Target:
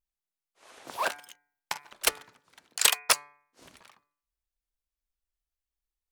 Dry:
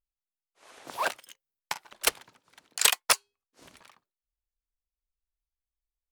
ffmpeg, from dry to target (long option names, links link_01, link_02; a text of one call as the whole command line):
ffmpeg -i in.wav -af "bandreject=frequency=145.6:width_type=h:width=4,bandreject=frequency=291.2:width_type=h:width=4,bandreject=frequency=436.8:width_type=h:width=4,bandreject=frequency=582.4:width_type=h:width=4,bandreject=frequency=728:width_type=h:width=4,bandreject=frequency=873.6:width_type=h:width=4,bandreject=frequency=1019.2:width_type=h:width=4,bandreject=frequency=1164.8:width_type=h:width=4,bandreject=frequency=1310.4:width_type=h:width=4,bandreject=frequency=1456:width_type=h:width=4,bandreject=frequency=1601.6:width_type=h:width=4,bandreject=frequency=1747.2:width_type=h:width=4,bandreject=frequency=1892.8:width_type=h:width=4,bandreject=frequency=2038.4:width_type=h:width=4,bandreject=frequency=2184:width_type=h:width=4,bandreject=frequency=2329.6:width_type=h:width=4,bandreject=frequency=2475.2:width_type=h:width=4" out.wav